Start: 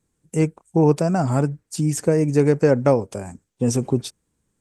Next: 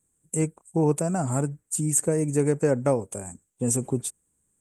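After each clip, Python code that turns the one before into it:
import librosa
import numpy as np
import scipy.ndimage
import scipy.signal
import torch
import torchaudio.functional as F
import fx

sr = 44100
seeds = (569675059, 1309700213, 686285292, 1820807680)

y = fx.high_shelf_res(x, sr, hz=6400.0, db=8.5, q=3.0)
y = F.gain(torch.from_numpy(y), -6.0).numpy()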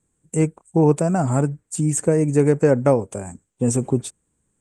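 y = fx.air_absorb(x, sr, metres=76.0)
y = F.gain(torch.from_numpy(y), 6.5).numpy()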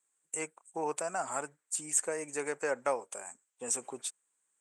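y = scipy.signal.sosfilt(scipy.signal.butter(2, 1000.0, 'highpass', fs=sr, output='sos'), x)
y = F.gain(torch.from_numpy(y), -4.0).numpy()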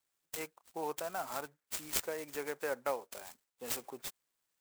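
y = fx.clock_jitter(x, sr, seeds[0], jitter_ms=0.031)
y = F.gain(torch.from_numpy(y), -4.0).numpy()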